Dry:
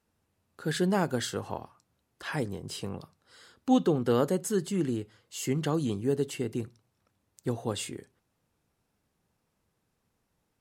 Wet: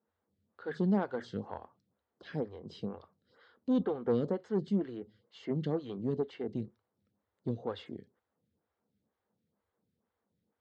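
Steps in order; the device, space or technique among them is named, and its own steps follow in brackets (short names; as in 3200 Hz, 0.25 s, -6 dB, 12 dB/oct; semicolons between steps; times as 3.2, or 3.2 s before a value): vibe pedal into a guitar amplifier (photocell phaser 2.1 Hz; tube stage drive 23 dB, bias 0.45; speaker cabinet 84–4000 Hz, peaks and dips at 85 Hz +7 dB, 210 Hz +8 dB, 480 Hz +5 dB, 2600 Hz -9 dB); gain -2.5 dB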